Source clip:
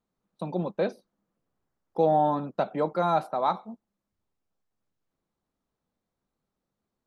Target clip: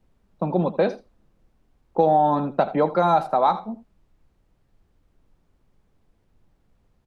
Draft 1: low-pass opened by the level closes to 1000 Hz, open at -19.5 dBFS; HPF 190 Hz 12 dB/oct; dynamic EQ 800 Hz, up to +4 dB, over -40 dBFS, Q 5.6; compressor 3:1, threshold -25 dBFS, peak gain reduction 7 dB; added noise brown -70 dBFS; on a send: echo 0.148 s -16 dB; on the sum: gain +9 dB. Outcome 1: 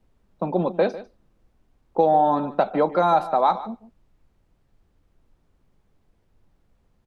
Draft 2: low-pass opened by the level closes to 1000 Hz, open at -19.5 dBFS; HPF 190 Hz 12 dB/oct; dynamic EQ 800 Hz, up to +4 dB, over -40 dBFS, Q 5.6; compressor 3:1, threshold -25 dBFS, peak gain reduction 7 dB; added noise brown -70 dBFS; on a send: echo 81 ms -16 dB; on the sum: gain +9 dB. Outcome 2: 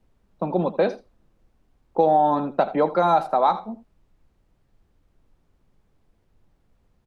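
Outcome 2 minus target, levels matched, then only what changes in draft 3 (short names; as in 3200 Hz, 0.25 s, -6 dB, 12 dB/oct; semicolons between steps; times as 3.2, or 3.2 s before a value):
125 Hz band -4.0 dB
change: HPF 78 Hz 12 dB/oct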